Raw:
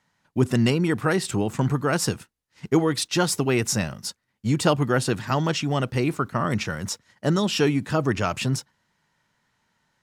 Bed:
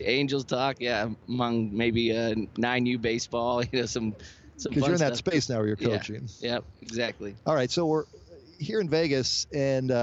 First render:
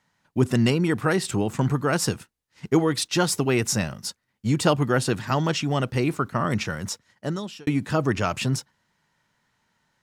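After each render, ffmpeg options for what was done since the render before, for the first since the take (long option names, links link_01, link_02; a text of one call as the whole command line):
ffmpeg -i in.wav -filter_complex "[0:a]asplit=2[link_01][link_02];[link_01]atrim=end=7.67,asetpts=PTS-STARTPTS,afade=type=out:start_time=6.53:duration=1.14:curve=qsin[link_03];[link_02]atrim=start=7.67,asetpts=PTS-STARTPTS,afade=type=in:duration=0.004:curve=hsin[link_04];[link_03][link_04]concat=n=2:v=0:a=1" out.wav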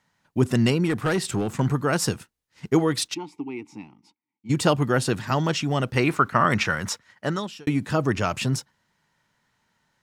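ffmpeg -i in.wav -filter_complex "[0:a]asettb=1/sr,asplit=3[link_01][link_02][link_03];[link_01]atrim=end=0.854[link_04];[link_02]atrim=start=0.85:end=1.6,asetpts=PTS-STARTPTS,afade=type=in:duration=0.004:curve=qsin,afade=type=out:start_time=0.746:duration=0.004:curve=qsin,asoftclip=type=hard:threshold=-18dB[link_05];[link_03]atrim=start=1.596[link_06];[link_04][link_05]acrossfade=duration=0.004:curve1=hsin:curve2=qsin[link_07];[link_07][link_06]acrossfade=duration=0.004:curve1=qsin:curve2=hsin,asplit=3[link_08][link_09][link_10];[link_08]afade=type=out:start_time=3.13:duration=0.02[link_11];[link_09]asplit=3[link_12][link_13][link_14];[link_12]bandpass=frequency=300:width_type=q:width=8,volume=0dB[link_15];[link_13]bandpass=frequency=870:width_type=q:width=8,volume=-6dB[link_16];[link_14]bandpass=frequency=2240:width_type=q:width=8,volume=-9dB[link_17];[link_15][link_16][link_17]amix=inputs=3:normalize=0,afade=type=in:start_time=3.13:duration=0.02,afade=type=out:start_time=4.49:duration=0.02[link_18];[link_10]afade=type=in:start_time=4.49:duration=0.02[link_19];[link_11][link_18][link_19]amix=inputs=3:normalize=0,asettb=1/sr,asplit=3[link_20][link_21][link_22];[link_20]atrim=end=5.964[link_23];[link_21]atrim=start=5.96:end=7.47,asetpts=PTS-STARTPTS,afade=type=in:duration=0.004:curve=qsin,afade=type=out:start_time=1.506:duration=0.004:curve=qsin,equalizer=frequency=1600:width=0.52:gain=8.5[link_24];[link_22]atrim=start=7.466[link_25];[link_23][link_24]acrossfade=duration=0.004:curve1=hsin:curve2=qsin[link_26];[link_26][link_25]acrossfade=duration=0.004:curve1=qsin:curve2=hsin" out.wav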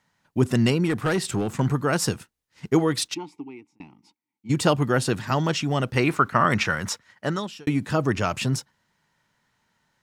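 ffmpeg -i in.wav -filter_complex "[0:a]asplit=2[link_01][link_02];[link_01]atrim=end=3.8,asetpts=PTS-STARTPTS,afade=type=out:start_time=3.18:duration=0.62[link_03];[link_02]atrim=start=3.8,asetpts=PTS-STARTPTS,afade=type=in:duration=0.004:curve=hsin[link_04];[link_03][link_04]concat=n=2:v=0:a=1" out.wav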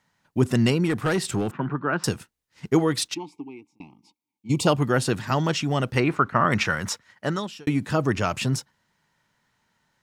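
ffmpeg -i in.wav -filter_complex "[0:a]asettb=1/sr,asplit=3[link_01][link_02][link_03];[link_01]atrim=end=1.514[link_04];[link_02]atrim=start=1.51:end=2.04,asetpts=PTS-STARTPTS,afade=type=in:duration=0.004:curve=qsin,afade=type=out:start_time=0.526:duration=0.004:curve=qsin,highpass=frequency=160:width=0.5412,highpass=frequency=160:width=1.3066,equalizer=frequency=220:width_type=q:width=4:gain=-7,equalizer=frequency=490:width_type=q:width=4:gain=-7,equalizer=frequency=750:width_type=q:width=4:gain=-4,equalizer=frequency=1500:width_type=q:width=4:gain=3,equalizer=frequency=2100:width_type=q:width=4:gain=-8,lowpass=frequency=2500:width=0.5412,lowpass=frequency=2500:width=1.3066[link_05];[link_03]atrim=start=2.036[link_06];[link_04][link_05]acrossfade=duration=0.004:curve1=hsin:curve2=qsin[link_07];[link_07][link_06]acrossfade=duration=0.004:curve1=qsin:curve2=hsin,asplit=3[link_08][link_09][link_10];[link_08]afade=type=out:start_time=3.18:duration=0.02[link_11];[link_09]asuperstop=centerf=1600:order=8:qfactor=1.7,afade=type=in:start_time=3.18:duration=0.02,afade=type=out:start_time=4.66:duration=0.02[link_12];[link_10]afade=type=in:start_time=4.66:duration=0.02[link_13];[link_11][link_12][link_13]amix=inputs=3:normalize=0,asplit=3[link_14][link_15][link_16];[link_14]afade=type=out:start_time=5.99:duration=0.02[link_17];[link_15]lowpass=frequency=2200:poles=1,afade=type=in:start_time=5.99:duration=0.02,afade=type=out:start_time=6.51:duration=0.02[link_18];[link_16]afade=type=in:start_time=6.51:duration=0.02[link_19];[link_17][link_18][link_19]amix=inputs=3:normalize=0" out.wav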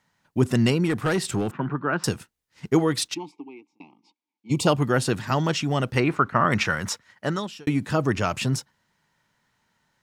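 ffmpeg -i in.wav -filter_complex "[0:a]asplit=3[link_01][link_02][link_03];[link_01]afade=type=out:start_time=3.31:duration=0.02[link_04];[link_02]highpass=280,lowpass=4800,afade=type=in:start_time=3.31:duration=0.02,afade=type=out:start_time=4.5:duration=0.02[link_05];[link_03]afade=type=in:start_time=4.5:duration=0.02[link_06];[link_04][link_05][link_06]amix=inputs=3:normalize=0" out.wav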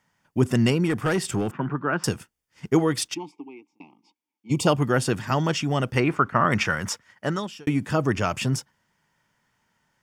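ffmpeg -i in.wav -af "bandreject=frequency=4000:width=6.6" out.wav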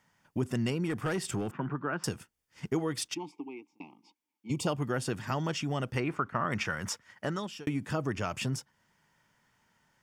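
ffmpeg -i in.wav -af "acompressor=threshold=-36dB:ratio=2" out.wav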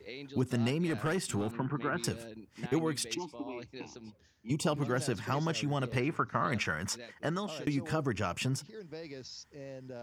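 ffmpeg -i in.wav -i bed.wav -filter_complex "[1:a]volume=-19.5dB[link_01];[0:a][link_01]amix=inputs=2:normalize=0" out.wav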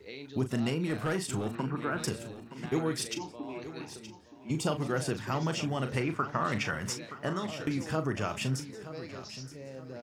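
ffmpeg -i in.wav -filter_complex "[0:a]asplit=2[link_01][link_02];[link_02]adelay=38,volume=-9dB[link_03];[link_01][link_03]amix=inputs=2:normalize=0,aecho=1:1:922|1844|2766|3688:0.211|0.0803|0.0305|0.0116" out.wav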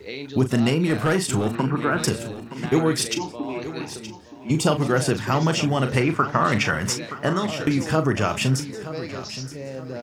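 ffmpeg -i in.wav -af "volume=10.5dB" out.wav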